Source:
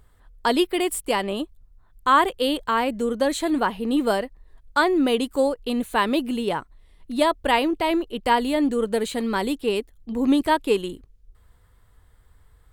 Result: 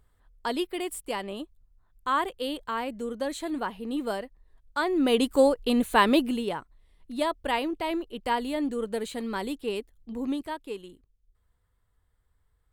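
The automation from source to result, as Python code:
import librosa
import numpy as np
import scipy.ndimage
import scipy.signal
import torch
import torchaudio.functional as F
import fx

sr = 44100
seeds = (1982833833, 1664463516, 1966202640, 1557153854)

y = fx.gain(x, sr, db=fx.line((4.77, -9.0), (5.24, 1.0), (6.17, 1.0), (6.57, -7.5), (10.13, -7.5), (10.55, -15.5)))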